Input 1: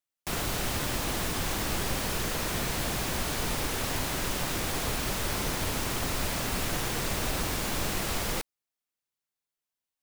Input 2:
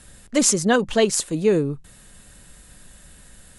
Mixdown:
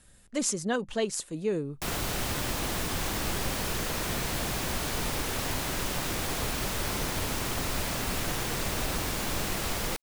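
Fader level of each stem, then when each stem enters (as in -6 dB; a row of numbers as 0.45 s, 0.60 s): -0.5 dB, -11.0 dB; 1.55 s, 0.00 s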